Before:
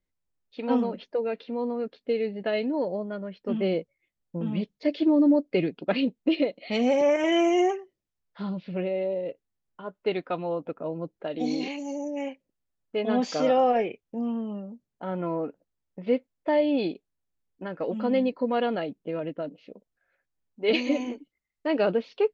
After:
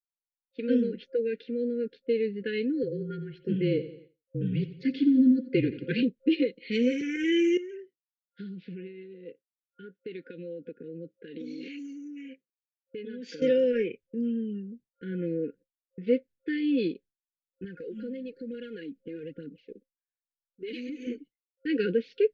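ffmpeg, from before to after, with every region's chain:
-filter_complex "[0:a]asettb=1/sr,asplit=3[a][b][c];[a]atrim=end=2.834[d];[b]atrim=start=2.83:end=6.03,asetpts=PTS-STARTPTS,afade=t=in:d=0.004:c=qsin,afade=t=out:st=3.196:d=0.004:c=qsin,afreqshift=-32,aecho=1:1:87|174|261|348|435:0.2|0.0958|0.046|0.0221|0.0106,atrim=end_sample=141120[e];[c]atrim=start=6.026[f];[d][e]acrossfade=d=0.004:c1=hsin:c2=qsin[g];[g][f]acrossfade=d=0.004:c1=qsin:c2=hsin,asettb=1/sr,asplit=3[h][i][j];[h]atrim=end=7.574[k];[i]atrim=start=7.57:end=13.42,asetpts=PTS-STARTPTS,afade=t=in:d=0.004:c=qsin,afade=t=out:st=5.846:d=0.004:c=qsin,acompressor=threshold=-34dB:ratio=10:attack=3.2:release=140:knee=1:detection=peak,highpass=150,lowpass=6k[l];[j]atrim=start=13.416[m];[k][l]acrossfade=d=0.004:c1=hsin:c2=qsin[n];[n][m]acrossfade=d=0.004:c1=qsin:c2=hsin,asettb=1/sr,asplit=3[o][p][q];[o]atrim=end=17.644[r];[p]atrim=start=17.64:end=21.07,asetpts=PTS-STARTPTS,afade=t=in:d=0.004:c=qsin,afade=t=out:st=3.426:d=0.004:c=qsin,aphaser=in_gain=1:out_gain=1:delay=4.4:decay=0.55:speed=1.1:type=triangular,acompressor=threshold=-35dB:ratio=5:attack=3.2:release=140:knee=1:detection=peak[s];[q]atrim=start=21.066[t];[r][s]acrossfade=d=0.004:c1=hsin:c2=qsin[u];[u][t]acrossfade=d=0.004:c1=qsin:c2=hsin,agate=range=-33dB:threshold=-46dB:ratio=3:detection=peak,highshelf=f=4.9k:g=-9.5,afftfilt=real='re*(1-between(b*sr/4096,530,1400))':imag='im*(1-between(b*sr/4096,530,1400))':win_size=4096:overlap=0.75"

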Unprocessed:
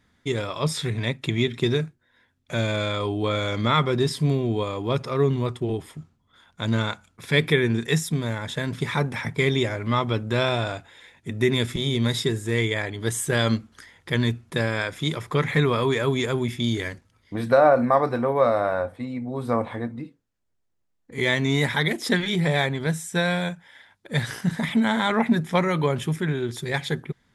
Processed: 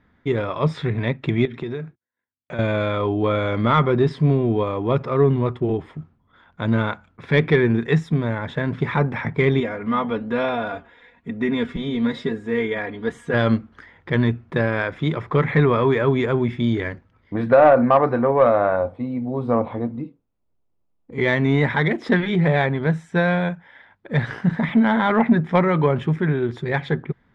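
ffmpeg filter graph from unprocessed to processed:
-filter_complex "[0:a]asettb=1/sr,asplit=3[a][b][c];[a]atrim=end=1.454[d];[b]atrim=start=1.45:end=2.59,asetpts=PTS-STARTPTS,afade=t=in:d=0.004:c=qsin,afade=t=out:st=1.136:d=0.004:c=qsin,highpass=f=130:p=1,agate=range=-30dB:threshold=-58dB:ratio=16:release=100:detection=peak,acompressor=threshold=-32dB:ratio=3:attack=3.2:release=140:knee=1:detection=peak[e];[c]atrim=start=2.586[f];[d][e]acrossfade=d=0.004:c1=hsin:c2=qsin[g];[g][f]acrossfade=d=0.004:c1=qsin:c2=hsin,asettb=1/sr,asplit=3[h][i][j];[h]atrim=end=9.604[k];[i]atrim=start=9.6:end=13.34,asetpts=PTS-STARTPTS,afade=t=in:d=0.004:c=qsin,afade=t=out:st=3.736:d=0.004:c=qsin,aecho=1:1:4.2:0.76,atrim=end_sample=164934,flanger=delay=2.9:depth=4.9:regen=-90:speed=1.1:shape=triangular[l];[j]atrim=start=13.336[m];[k][l]acrossfade=d=0.004:c1=hsin:c2=qsin[n];[n][m]acrossfade=d=0.004:c1=qsin:c2=hsin,asettb=1/sr,asplit=3[o][p][q];[o]atrim=end=18.764[r];[p]atrim=start=18.76:end=21.18,asetpts=PTS-STARTPTS,afade=t=in:d=0.004:c=qsin,afade=t=out:st=2.416:d=0.004:c=qsin,equalizer=f=1.7k:t=o:w=0.53:g=-13.5,acrusher=bits=9:mode=log:mix=0:aa=0.000001[s];[q]atrim=start=21.176[t];[r][s]acrossfade=d=0.004:c1=hsin:c2=qsin[u];[u][t]acrossfade=d=0.004:c1=qsin:c2=hsin,lowpass=1.9k,equalizer=f=110:w=4.4:g=-2.5,acontrast=71,volume=-1.5dB"

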